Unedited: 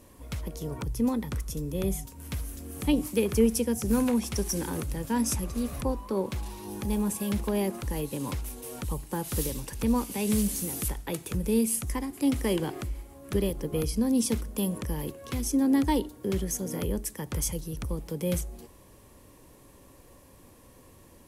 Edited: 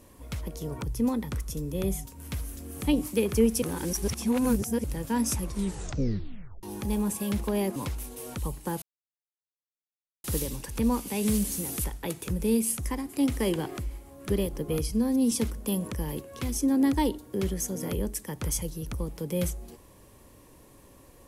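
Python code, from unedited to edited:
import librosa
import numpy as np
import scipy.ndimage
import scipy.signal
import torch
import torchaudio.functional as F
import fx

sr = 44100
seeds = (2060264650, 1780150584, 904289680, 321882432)

y = fx.edit(x, sr, fx.reverse_span(start_s=3.62, length_s=1.22),
    fx.tape_stop(start_s=5.42, length_s=1.21),
    fx.cut(start_s=7.76, length_s=0.46),
    fx.insert_silence(at_s=9.28, length_s=1.42),
    fx.stretch_span(start_s=13.95, length_s=0.27, factor=1.5), tone=tone)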